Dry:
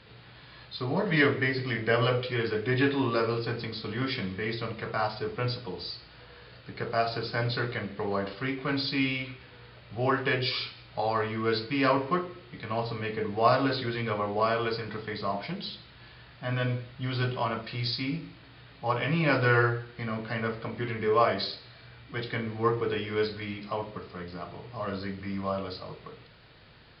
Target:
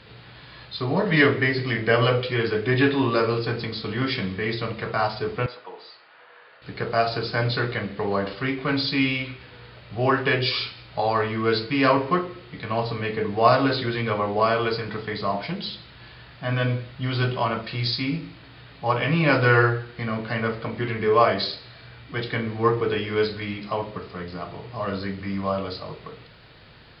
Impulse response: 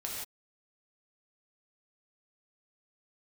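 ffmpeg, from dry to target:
-filter_complex "[0:a]asettb=1/sr,asplit=3[link_01][link_02][link_03];[link_01]atrim=end=5.464[link_04];[link_02]atrim=start=5.46:end=6.62,asetpts=PTS-STARTPTS,afade=type=in:duration=0.004:curve=qsin,afade=type=out:start_time=1.156:duration=0.004:curve=qsin,highpass=700,lowpass=2000[link_05];[link_03]atrim=start=6.616[link_06];[link_04][link_05]acrossfade=duration=0.004:curve1=hsin:curve2=qsin[link_07];[link_07][link_06]acrossfade=duration=0.004:curve1=qsin:curve2=hsin,volume=5.5dB"

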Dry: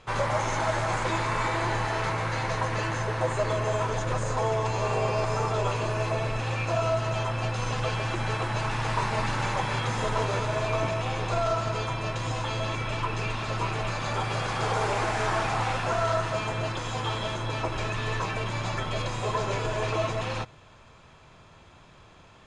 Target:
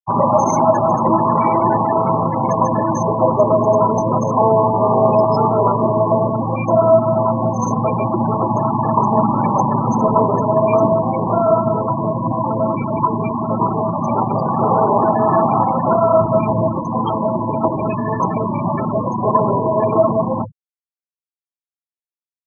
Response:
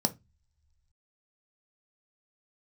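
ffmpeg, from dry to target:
-filter_complex "[0:a]asettb=1/sr,asplit=3[link_01][link_02][link_03];[link_01]atrim=end=16.204[link_04];[link_02]atrim=start=16.2:end=16.77,asetpts=PTS-STARTPTS,afade=type=in:duration=0.004:curve=qsin,afade=type=out:start_time=0.566:duration=0.004:curve=qsin,equalizer=frequency=84:width=1.5:gain=9[link_05];[link_03]atrim=start=16.766[link_06];[link_04][link_05]acrossfade=duration=0.004:curve1=hsin:curve2=qsin[link_07];[link_07][link_06]acrossfade=duration=0.004:curve1=qsin:curve2=hsin[link_08];[1:a]atrim=start_sample=2205,afade=type=out:start_time=0.14:duration=0.01,atrim=end_sample=6615,asetrate=48510,aresample=44100[link_09];[link_08][link_09]afir=irnorm=-1:irlink=0,afftfilt=real='re*gte(hypot(re,im),0.141)':imag='im*gte(hypot(re,im),0.141)':win_size=1024:overlap=0.75,volume=3.5dB"

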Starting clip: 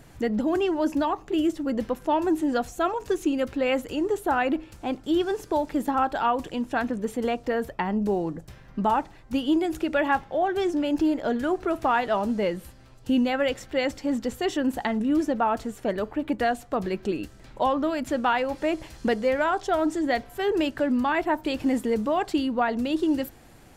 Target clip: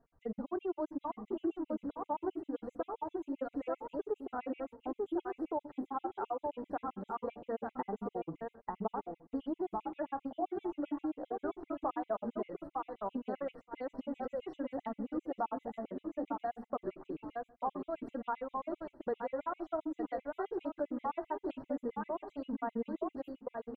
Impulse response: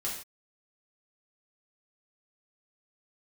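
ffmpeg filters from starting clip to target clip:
-filter_complex "[0:a]asplit=2[link_01][link_02];[link_02]aecho=0:1:889|1778|2667:0.562|0.118|0.0248[link_03];[link_01][link_03]amix=inputs=2:normalize=0,flanger=delay=4.3:depth=6.2:regen=41:speed=0.22:shape=sinusoidal,bass=frequency=250:gain=-5,treble=frequency=4000:gain=-11,bandreject=frequency=60:width_type=h:width=6,bandreject=frequency=120:width_type=h:width=6,bandreject=frequency=180:width_type=h:width=6,bandreject=frequency=240:width_type=h:width=6,bandreject=frequency=300:width_type=h:width=6,agate=range=-18dB:threshold=-39dB:ratio=16:detection=peak,asplit=2[link_04][link_05];[link_05]adelay=61,lowpass=frequency=3500:poles=1,volume=-18.5dB,asplit=2[link_06][link_07];[link_07]adelay=61,lowpass=frequency=3500:poles=1,volume=0.33,asplit=2[link_08][link_09];[link_09]adelay=61,lowpass=frequency=3500:poles=1,volume=0.33[link_10];[link_06][link_08][link_10]amix=inputs=3:normalize=0[link_11];[link_04][link_11]amix=inputs=2:normalize=0,acompressor=threshold=-41dB:ratio=2.5,firequalizer=gain_entry='entry(1200,0);entry(1800,-12);entry(5400,-19)':delay=0.05:min_phase=1,afftfilt=real='re*gt(sin(2*PI*7.6*pts/sr)*(1-2*mod(floor(b*sr/1024/2000),2)),0)':imag='im*gt(sin(2*PI*7.6*pts/sr)*(1-2*mod(floor(b*sr/1024/2000),2)),0)':win_size=1024:overlap=0.75,volume=4dB"

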